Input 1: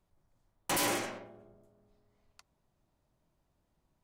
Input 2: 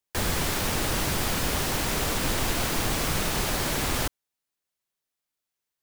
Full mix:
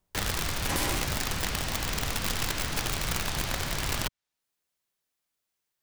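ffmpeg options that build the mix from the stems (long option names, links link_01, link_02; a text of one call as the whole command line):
ffmpeg -i stem1.wav -i stem2.wav -filter_complex "[0:a]volume=-1.5dB[link_01];[1:a]acrossover=split=160|550|1100|6900[link_02][link_03][link_04][link_05][link_06];[link_02]acompressor=threshold=-30dB:ratio=4[link_07];[link_03]acompressor=threshold=-50dB:ratio=4[link_08];[link_04]acompressor=threshold=-48dB:ratio=4[link_09];[link_05]acompressor=threshold=-38dB:ratio=4[link_10];[link_06]acompressor=threshold=-56dB:ratio=4[link_11];[link_07][link_08][link_09][link_10][link_11]amix=inputs=5:normalize=0,aeval=exprs='(mod(18.8*val(0)+1,2)-1)/18.8':channel_layout=same,volume=2.5dB[link_12];[link_01][link_12]amix=inputs=2:normalize=0" out.wav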